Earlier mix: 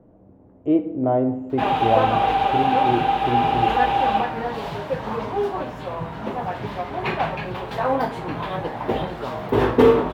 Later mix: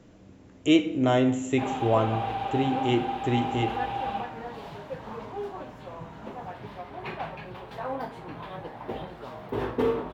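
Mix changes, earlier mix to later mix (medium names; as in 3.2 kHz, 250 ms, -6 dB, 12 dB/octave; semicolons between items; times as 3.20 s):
speech: remove resonant low-pass 750 Hz, resonance Q 1.5; background -11.5 dB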